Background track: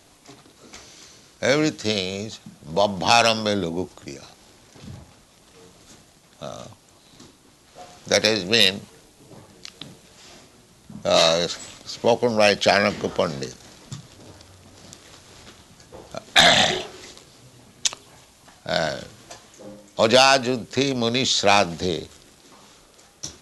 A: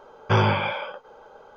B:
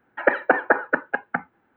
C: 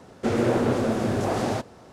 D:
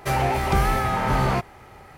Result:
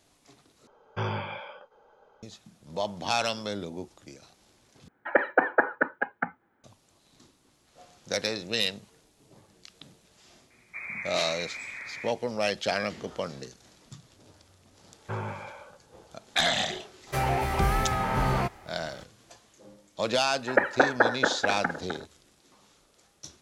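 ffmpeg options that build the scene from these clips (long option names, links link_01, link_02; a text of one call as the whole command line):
ffmpeg -i bed.wav -i cue0.wav -i cue1.wav -i cue2.wav -i cue3.wav -filter_complex "[1:a]asplit=2[link_01][link_02];[2:a]asplit=2[link_03][link_04];[0:a]volume=-11dB[link_05];[link_03]bandreject=frequency=2700:width=13[link_06];[3:a]lowpass=frequency=2200:width_type=q:width=0.5098,lowpass=frequency=2200:width_type=q:width=0.6013,lowpass=frequency=2200:width_type=q:width=0.9,lowpass=frequency=2200:width_type=q:width=2.563,afreqshift=-2600[link_07];[link_02]lowpass=frequency=2400:width=0.5412,lowpass=frequency=2400:width=1.3066[link_08];[link_04]asplit=2[link_09][link_10];[link_10]adelay=256,lowpass=frequency=1500:poles=1,volume=-6.5dB,asplit=2[link_11][link_12];[link_12]adelay=256,lowpass=frequency=1500:poles=1,volume=0.46,asplit=2[link_13][link_14];[link_14]adelay=256,lowpass=frequency=1500:poles=1,volume=0.46,asplit=2[link_15][link_16];[link_16]adelay=256,lowpass=frequency=1500:poles=1,volume=0.46,asplit=2[link_17][link_18];[link_18]adelay=256,lowpass=frequency=1500:poles=1,volume=0.46[link_19];[link_09][link_11][link_13][link_15][link_17][link_19]amix=inputs=6:normalize=0[link_20];[link_05]asplit=3[link_21][link_22][link_23];[link_21]atrim=end=0.674[link_24];[link_01]atrim=end=1.56,asetpts=PTS-STARTPTS,volume=-11.5dB[link_25];[link_22]atrim=start=2.226:end=4.884[link_26];[link_06]atrim=end=1.76,asetpts=PTS-STARTPTS,volume=-4dB[link_27];[link_23]atrim=start=6.636[link_28];[link_07]atrim=end=1.92,asetpts=PTS-STARTPTS,volume=-15.5dB,afade=type=in:duration=0.004:curve=hsin,afade=type=out:start_time=1.916:duration=0.004:curve=hsin,adelay=463050S[link_29];[link_08]atrim=end=1.56,asetpts=PTS-STARTPTS,volume=-14.5dB,afade=type=in:duration=0.004:curve=hsin,afade=type=out:start_time=1.556:duration=0.004:curve=hsin,adelay=14790[link_30];[4:a]atrim=end=1.97,asetpts=PTS-STARTPTS,volume=-4.5dB,afade=type=in:duration=0.004:curve=hsin,afade=type=out:start_time=1.966:duration=0.004:curve=hsin,adelay=17070[link_31];[link_20]atrim=end=1.76,asetpts=PTS-STARTPTS,volume=-3.5dB,afade=type=in:duration=0.004:curve=hsin,afade=type=out:start_time=1.756:duration=0.004:curve=hsin,adelay=20300[link_32];[link_24][link_25]acrossfade=duration=0.004:curve1=hsin:curve2=hsin[link_33];[link_33][link_26]acrossfade=duration=0.004:curve1=hsin:curve2=hsin[link_34];[link_34][link_27]acrossfade=duration=0.004:curve1=hsin:curve2=hsin[link_35];[link_35][link_28]acrossfade=duration=0.004:curve1=hsin:curve2=hsin[link_36];[link_36][link_29][link_30][link_31][link_32]amix=inputs=5:normalize=0" out.wav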